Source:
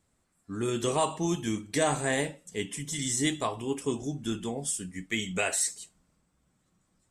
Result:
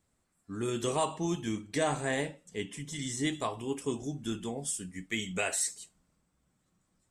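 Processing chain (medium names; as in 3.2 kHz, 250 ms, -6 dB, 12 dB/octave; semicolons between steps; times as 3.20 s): 1.03–3.32 s: treble shelf 11 kHz -> 6.4 kHz -10 dB; trim -3 dB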